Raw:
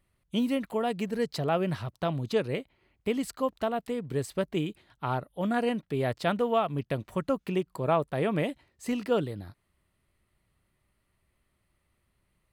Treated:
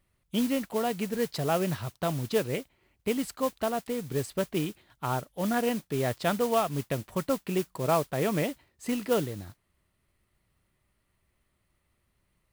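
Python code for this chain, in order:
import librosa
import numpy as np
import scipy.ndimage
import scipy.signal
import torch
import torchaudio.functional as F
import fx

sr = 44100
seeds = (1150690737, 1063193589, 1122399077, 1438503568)

y = fx.mod_noise(x, sr, seeds[0], snr_db=15)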